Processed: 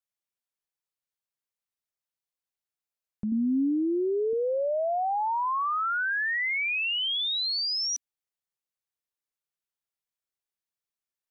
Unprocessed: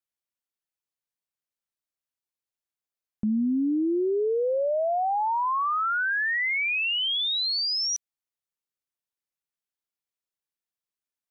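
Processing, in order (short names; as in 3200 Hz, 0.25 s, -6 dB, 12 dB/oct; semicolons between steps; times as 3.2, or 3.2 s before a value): bell 270 Hz -15 dB 0.24 oct, from 3.32 s +2 dB, from 4.33 s -8.5 dB; gain -2 dB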